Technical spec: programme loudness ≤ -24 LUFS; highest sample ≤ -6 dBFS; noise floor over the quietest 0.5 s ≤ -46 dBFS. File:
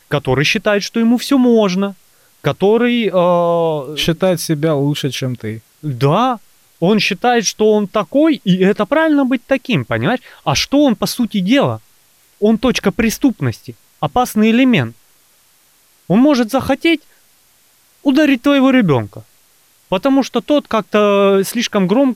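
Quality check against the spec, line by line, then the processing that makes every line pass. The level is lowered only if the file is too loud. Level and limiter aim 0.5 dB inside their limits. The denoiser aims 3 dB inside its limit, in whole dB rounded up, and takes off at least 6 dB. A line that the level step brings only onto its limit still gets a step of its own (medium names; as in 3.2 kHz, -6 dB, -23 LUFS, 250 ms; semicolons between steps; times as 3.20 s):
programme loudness -14.5 LUFS: fail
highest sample -3.5 dBFS: fail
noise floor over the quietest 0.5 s -53 dBFS: pass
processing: trim -10 dB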